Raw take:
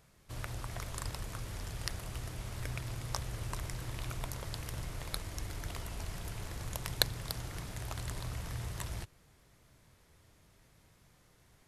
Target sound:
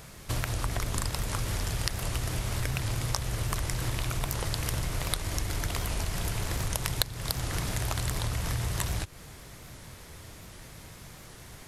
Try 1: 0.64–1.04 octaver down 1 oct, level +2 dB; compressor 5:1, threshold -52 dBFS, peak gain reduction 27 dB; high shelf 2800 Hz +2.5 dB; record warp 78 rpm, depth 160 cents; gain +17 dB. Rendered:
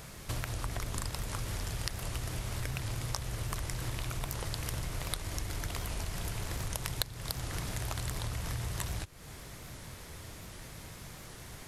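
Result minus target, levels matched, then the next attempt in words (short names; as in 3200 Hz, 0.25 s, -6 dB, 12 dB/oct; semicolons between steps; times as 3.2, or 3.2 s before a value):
compressor: peak gain reduction +5.5 dB
0.64–1.04 octaver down 1 oct, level +2 dB; compressor 5:1, threshold -45 dBFS, peak gain reduction 21.5 dB; high shelf 2800 Hz +2.5 dB; record warp 78 rpm, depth 160 cents; gain +17 dB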